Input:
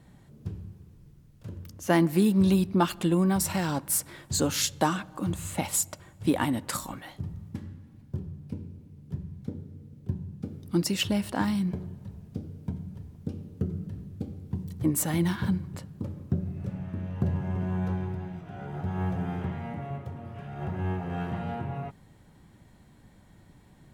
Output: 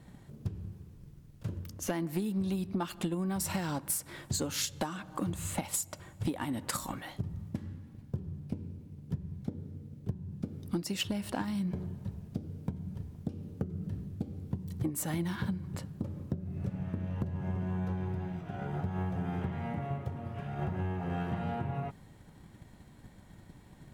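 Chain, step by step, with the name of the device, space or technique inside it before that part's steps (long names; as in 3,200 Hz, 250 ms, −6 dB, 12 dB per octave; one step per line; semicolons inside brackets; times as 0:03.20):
drum-bus smash (transient designer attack +7 dB, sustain +1 dB; downward compressor 6 to 1, threshold −29 dBFS, peak gain reduction 16 dB; soft clipping −22 dBFS, distortion −19 dB)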